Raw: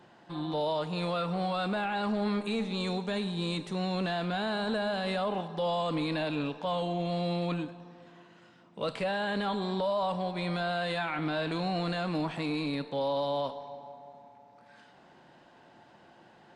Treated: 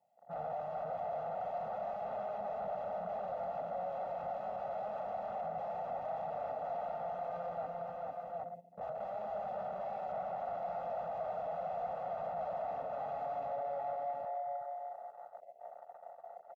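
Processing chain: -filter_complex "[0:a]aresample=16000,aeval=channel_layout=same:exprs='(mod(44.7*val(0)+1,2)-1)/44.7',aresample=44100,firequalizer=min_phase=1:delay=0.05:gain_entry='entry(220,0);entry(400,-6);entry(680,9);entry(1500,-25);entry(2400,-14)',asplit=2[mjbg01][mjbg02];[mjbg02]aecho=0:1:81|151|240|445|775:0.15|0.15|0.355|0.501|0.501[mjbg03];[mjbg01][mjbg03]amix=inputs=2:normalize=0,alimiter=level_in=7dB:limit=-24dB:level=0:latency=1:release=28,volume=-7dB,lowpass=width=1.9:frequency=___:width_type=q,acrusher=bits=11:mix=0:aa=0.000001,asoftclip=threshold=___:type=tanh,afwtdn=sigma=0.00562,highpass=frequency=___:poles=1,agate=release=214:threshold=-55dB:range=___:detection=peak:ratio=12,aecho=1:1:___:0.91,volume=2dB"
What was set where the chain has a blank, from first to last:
2200, -37dB, 560, -8dB, 1.5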